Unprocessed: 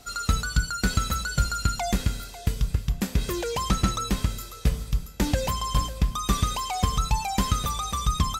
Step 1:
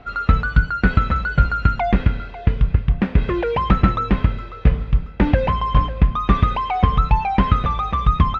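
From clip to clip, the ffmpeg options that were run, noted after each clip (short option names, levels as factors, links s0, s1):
-af "lowpass=f=2500:w=0.5412,lowpass=f=2500:w=1.3066,volume=2.66"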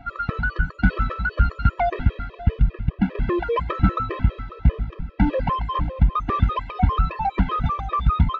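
-af "aemphasis=mode=reproduction:type=50kf,acontrast=79,afftfilt=real='re*gt(sin(2*PI*5*pts/sr)*(1-2*mod(floor(b*sr/1024/330),2)),0)':imag='im*gt(sin(2*PI*5*pts/sr)*(1-2*mod(floor(b*sr/1024/330),2)),0)':win_size=1024:overlap=0.75,volume=0.531"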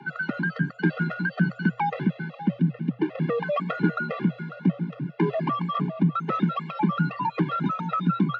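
-filter_complex "[0:a]asplit=2[s0][s1];[s1]acompressor=threshold=0.0562:ratio=6,volume=1.26[s2];[s0][s2]amix=inputs=2:normalize=0,afreqshift=120,volume=0.398"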